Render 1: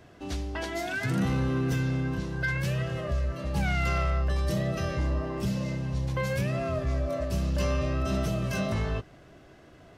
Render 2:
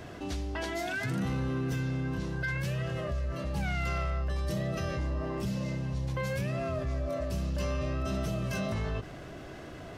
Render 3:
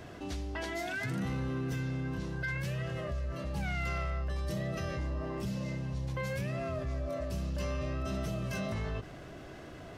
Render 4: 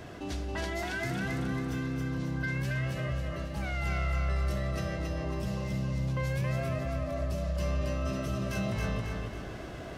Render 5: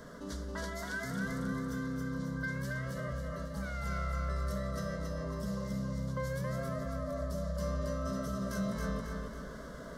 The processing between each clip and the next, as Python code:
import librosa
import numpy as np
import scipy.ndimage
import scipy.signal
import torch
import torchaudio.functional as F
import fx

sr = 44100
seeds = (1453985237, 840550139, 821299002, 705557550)

y1 = fx.env_flatten(x, sr, amount_pct=50)
y1 = y1 * librosa.db_to_amplitude(-5.5)
y2 = fx.dynamic_eq(y1, sr, hz=2000.0, q=6.2, threshold_db=-53.0, ratio=4.0, max_db=3)
y2 = y2 * librosa.db_to_amplitude(-3.0)
y3 = fx.rider(y2, sr, range_db=4, speed_s=2.0)
y3 = fx.echo_feedback(y3, sr, ms=274, feedback_pct=46, wet_db=-3)
y4 = fx.fixed_phaser(y3, sr, hz=510.0, stages=8)